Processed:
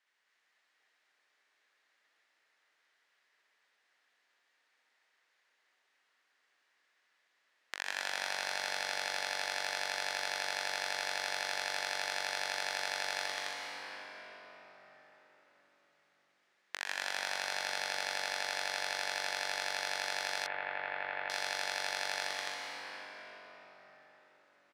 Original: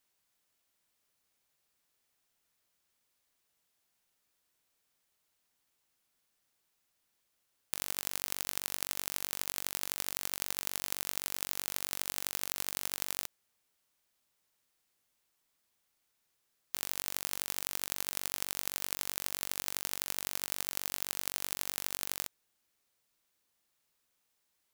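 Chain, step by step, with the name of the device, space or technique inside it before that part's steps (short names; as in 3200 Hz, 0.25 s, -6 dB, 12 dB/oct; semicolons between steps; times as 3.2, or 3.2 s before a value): station announcement (BPF 470–4200 Hz; bell 1800 Hz +10 dB 0.56 oct; loudspeakers at several distances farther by 22 m -1 dB, 94 m -1 dB; reverb RT60 5.2 s, pre-delay 0.106 s, DRR -0.5 dB); 20.46–21.3 inverse Chebyshev low-pass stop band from 7800 Hz, stop band 60 dB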